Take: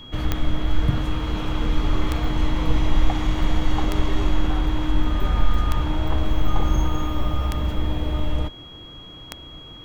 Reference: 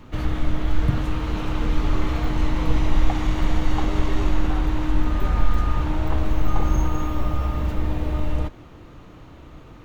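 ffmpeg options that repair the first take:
-af "adeclick=t=4,bandreject=f=3.3k:w=30"

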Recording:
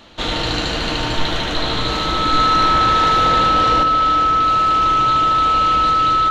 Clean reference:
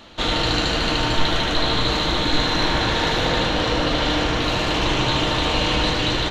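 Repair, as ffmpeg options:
-af "bandreject=f=1.3k:w=30,asetnsamples=n=441:p=0,asendcmd='3.83 volume volume 5dB',volume=0dB"

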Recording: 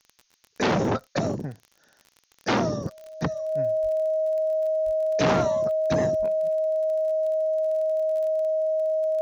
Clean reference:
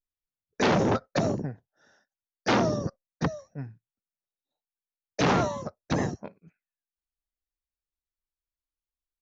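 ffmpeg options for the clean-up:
-filter_complex "[0:a]adeclick=t=4,bandreject=f=630:w=30,asplit=3[a][b][c];[a]afade=t=out:st=3.82:d=0.02[d];[b]highpass=f=140:w=0.5412,highpass=f=140:w=1.3066,afade=t=in:st=3.82:d=0.02,afade=t=out:st=3.94:d=0.02[e];[c]afade=t=in:st=3.94:d=0.02[f];[d][e][f]amix=inputs=3:normalize=0,asplit=3[g][h][i];[g]afade=t=out:st=4.85:d=0.02[j];[h]highpass=f=140:w=0.5412,highpass=f=140:w=1.3066,afade=t=in:st=4.85:d=0.02,afade=t=out:st=4.97:d=0.02[k];[i]afade=t=in:st=4.97:d=0.02[l];[j][k][l]amix=inputs=3:normalize=0,asplit=3[m][n][o];[m]afade=t=out:st=6.18:d=0.02[p];[n]highpass=f=140:w=0.5412,highpass=f=140:w=1.3066,afade=t=in:st=6.18:d=0.02,afade=t=out:st=6.3:d=0.02[q];[o]afade=t=in:st=6.3:d=0.02[r];[p][q][r]amix=inputs=3:normalize=0,agate=range=-21dB:threshold=-55dB"

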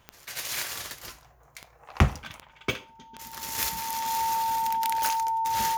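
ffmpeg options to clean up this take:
-af "adeclick=t=4,bandreject=f=900:w=30"

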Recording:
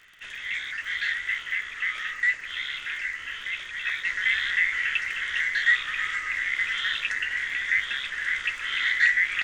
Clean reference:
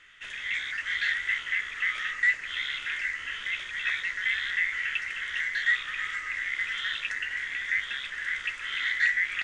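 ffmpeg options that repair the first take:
-af "adeclick=t=4,asetnsamples=n=441:p=0,asendcmd='4.05 volume volume -4dB',volume=0dB"

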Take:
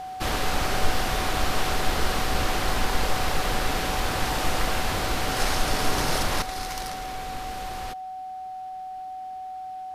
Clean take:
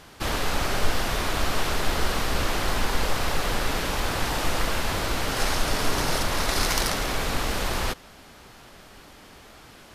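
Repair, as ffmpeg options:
-af "bandreject=f=750:w=30,asetnsamples=n=441:p=0,asendcmd='6.42 volume volume 10dB',volume=0dB"

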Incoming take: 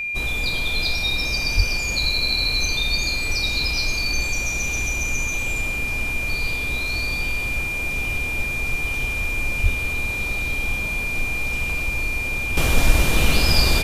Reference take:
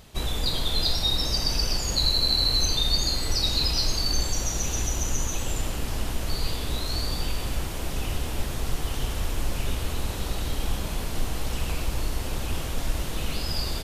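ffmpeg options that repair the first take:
-filter_complex "[0:a]bandreject=f=2.4k:w=30,asplit=3[a][b][c];[a]afade=t=out:st=1.56:d=0.02[d];[b]highpass=f=140:w=0.5412,highpass=f=140:w=1.3066,afade=t=in:st=1.56:d=0.02,afade=t=out:st=1.68:d=0.02[e];[c]afade=t=in:st=1.68:d=0.02[f];[d][e][f]amix=inputs=3:normalize=0,asplit=3[g][h][i];[g]afade=t=out:st=9.62:d=0.02[j];[h]highpass=f=140:w=0.5412,highpass=f=140:w=1.3066,afade=t=in:st=9.62:d=0.02,afade=t=out:st=9.74:d=0.02[k];[i]afade=t=in:st=9.74:d=0.02[l];[j][k][l]amix=inputs=3:normalize=0,asetnsamples=n=441:p=0,asendcmd='12.57 volume volume -11dB',volume=0dB"

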